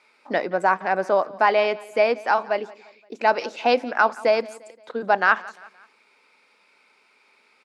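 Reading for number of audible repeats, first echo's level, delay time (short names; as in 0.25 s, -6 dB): 3, -21.0 dB, 0.174 s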